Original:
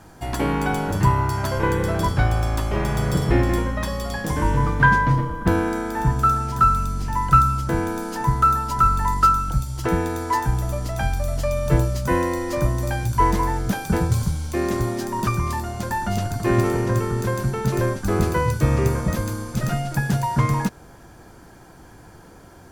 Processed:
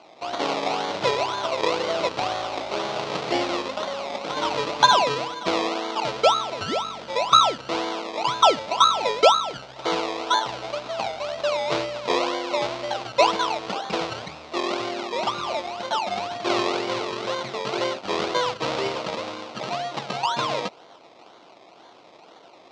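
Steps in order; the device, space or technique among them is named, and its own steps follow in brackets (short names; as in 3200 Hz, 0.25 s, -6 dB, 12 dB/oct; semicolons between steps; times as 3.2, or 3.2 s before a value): circuit-bent sampling toy (decimation with a swept rate 24×, swing 60% 2 Hz; speaker cabinet 490–5500 Hz, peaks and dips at 650 Hz +4 dB, 1700 Hz -8 dB, 3900 Hz +3 dB); gain +1.5 dB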